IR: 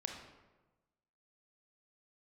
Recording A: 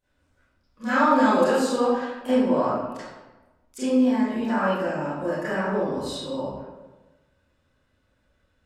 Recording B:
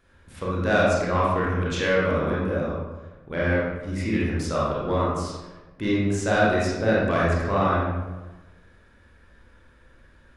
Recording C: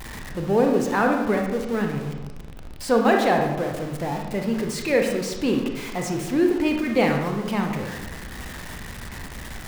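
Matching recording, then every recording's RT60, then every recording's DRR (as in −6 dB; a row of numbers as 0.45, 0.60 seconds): C; 1.2, 1.2, 1.2 seconds; −16.0, −7.0, 2.0 decibels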